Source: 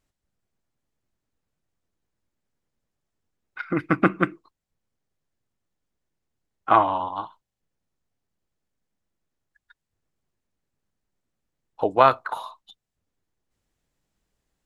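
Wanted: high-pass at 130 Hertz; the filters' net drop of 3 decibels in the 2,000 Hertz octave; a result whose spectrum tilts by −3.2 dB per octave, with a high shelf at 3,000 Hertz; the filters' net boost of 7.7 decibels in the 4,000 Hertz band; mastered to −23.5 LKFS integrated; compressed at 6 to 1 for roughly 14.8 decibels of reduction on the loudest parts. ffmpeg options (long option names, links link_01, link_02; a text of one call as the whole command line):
ffmpeg -i in.wav -af "highpass=130,equalizer=frequency=2000:width_type=o:gain=-8.5,highshelf=frequency=3000:gain=6,equalizer=frequency=4000:width_type=o:gain=8.5,acompressor=threshold=-28dB:ratio=6,volume=12dB" out.wav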